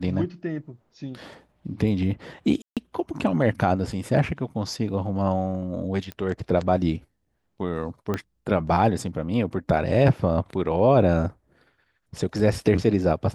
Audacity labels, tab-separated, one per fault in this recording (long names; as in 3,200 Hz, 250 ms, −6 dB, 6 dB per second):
2.620000	2.770000	drop-out 147 ms
6.120000	6.120000	click −20 dBFS
8.140000	8.140000	click −13 dBFS